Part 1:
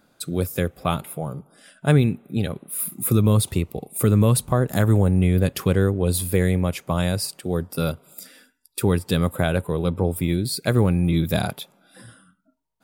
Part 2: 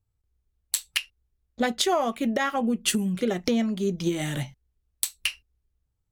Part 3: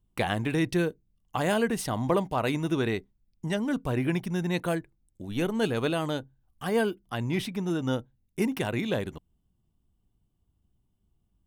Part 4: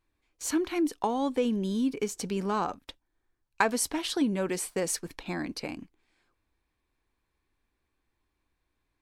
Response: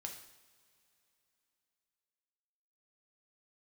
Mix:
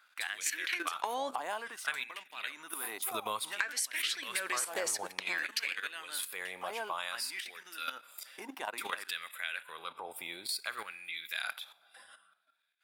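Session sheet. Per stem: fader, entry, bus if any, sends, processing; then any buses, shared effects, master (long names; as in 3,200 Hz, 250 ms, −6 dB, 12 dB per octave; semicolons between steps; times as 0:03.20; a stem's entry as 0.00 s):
−8.0 dB, 0.00 s, send −7 dB, parametric band 2,800 Hz +8 dB 1.4 octaves
−17.0 dB, 1.20 s, no send, no processing
−4.0 dB, 0.00 s, send −24 dB, parametric band 280 Hz +9.5 dB 0.57 octaves
−1.0 dB, 0.00 s, muted 0:01.36–0:03.16, send −20 dB, high-pass filter 130 Hz 12 dB per octave; flat-topped bell 1,000 Hz −11.5 dB 1.1 octaves; automatic gain control gain up to 13 dB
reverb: on, pre-delay 3 ms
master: output level in coarse steps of 11 dB; auto-filter high-pass sine 0.56 Hz 830–1,900 Hz; downward compressor 6 to 1, threshold −31 dBFS, peak gain reduction 14.5 dB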